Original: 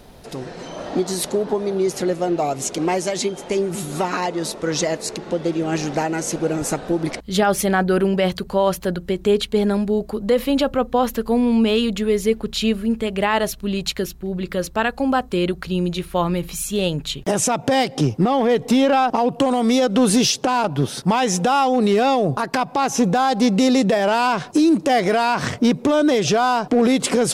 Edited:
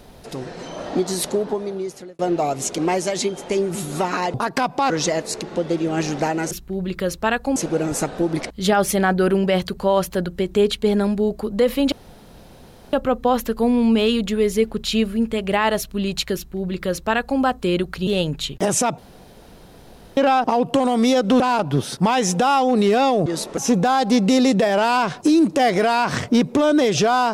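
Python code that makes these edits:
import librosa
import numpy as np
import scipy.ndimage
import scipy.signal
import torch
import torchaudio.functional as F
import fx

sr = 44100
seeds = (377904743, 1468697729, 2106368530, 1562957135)

y = fx.edit(x, sr, fx.fade_out_span(start_s=1.32, length_s=0.87),
    fx.swap(start_s=4.34, length_s=0.31, other_s=22.31, other_length_s=0.56),
    fx.insert_room_tone(at_s=10.62, length_s=1.01),
    fx.duplicate(start_s=14.04, length_s=1.05, to_s=6.26),
    fx.cut(start_s=15.76, length_s=0.97),
    fx.room_tone_fill(start_s=17.64, length_s=1.19),
    fx.cut(start_s=20.06, length_s=0.39), tone=tone)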